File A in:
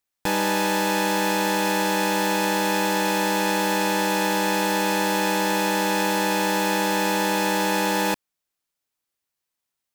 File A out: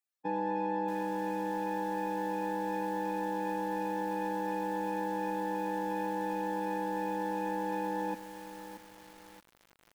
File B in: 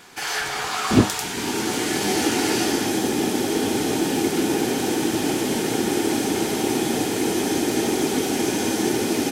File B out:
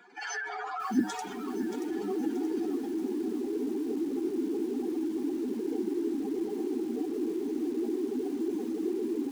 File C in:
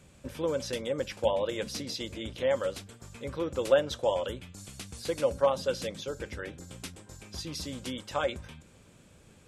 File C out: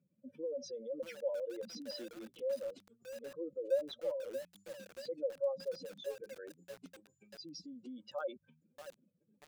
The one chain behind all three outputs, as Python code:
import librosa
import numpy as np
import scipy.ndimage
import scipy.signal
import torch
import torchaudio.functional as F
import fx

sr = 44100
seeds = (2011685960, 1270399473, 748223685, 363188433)

y = fx.spec_expand(x, sr, power=2.9)
y = scipy.signal.sosfilt(scipy.signal.butter(4, 210.0, 'highpass', fs=sr, output='sos'), y)
y = fx.echo_crushed(y, sr, ms=629, feedback_pct=55, bits=6, wet_db=-9.0)
y = y * 10.0 ** (-9.0 / 20.0)